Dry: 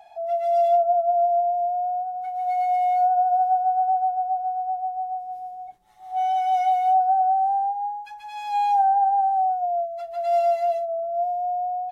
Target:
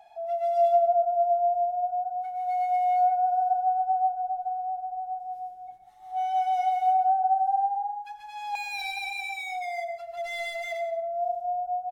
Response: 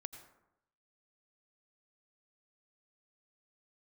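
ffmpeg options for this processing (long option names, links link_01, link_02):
-filter_complex "[0:a]asettb=1/sr,asplit=3[link_01][link_02][link_03];[link_01]atrim=end=8.554[link_04];[link_02]atrim=start=8.55:end=10.81,asetpts=PTS-STARTPTS,afade=type=in:duration=0.004:curve=qsin,afade=type=out:start_time=2.256:duration=0.004:curve=qsin,aeval=exprs='0.0596*(abs(mod(val(0)/0.0596+3,4)-2)-1)':channel_layout=same[link_05];[link_03]atrim=start=10.806[link_06];[link_04][link_05]acrossfade=duration=0.004:curve1=hsin:curve2=qsin[link_07];[link_07][link_06]acrossfade=duration=0.004:curve1=qsin:curve2=hsin,aecho=1:1:179:0.106[link_08];[1:a]atrim=start_sample=2205[link_09];[link_08][link_09]afir=irnorm=-1:irlink=0"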